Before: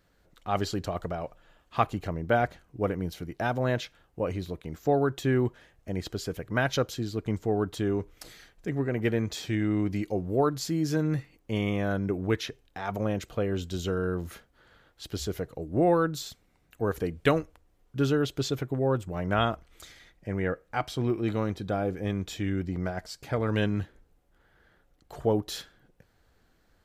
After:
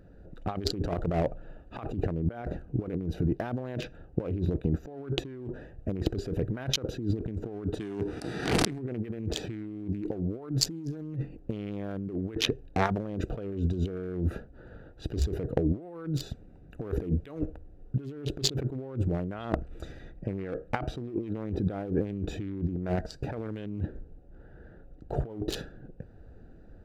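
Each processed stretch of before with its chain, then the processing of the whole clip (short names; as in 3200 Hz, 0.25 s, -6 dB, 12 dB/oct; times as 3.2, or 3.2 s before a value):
7.79–8.78 spectral whitening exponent 0.6 + speaker cabinet 130–9400 Hz, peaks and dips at 550 Hz -10 dB, 2700 Hz -3 dB, 6900 Hz -9 dB + backwards sustainer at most 34 dB/s
whole clip: Wiener smoothing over 41 samples; dynamic EQ 320 Hz, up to +5 dB, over -38 dBFS, Q 0.85; negative-ratio compressor -39 dBFS, ratio -1; gain +6 dB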